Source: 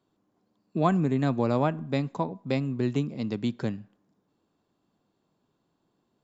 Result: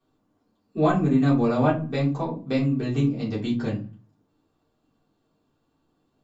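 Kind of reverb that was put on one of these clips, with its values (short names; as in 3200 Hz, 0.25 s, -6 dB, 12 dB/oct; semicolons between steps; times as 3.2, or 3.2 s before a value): shoebox room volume 120 m³, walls furnished, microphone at 3.6 m; gain -6 dB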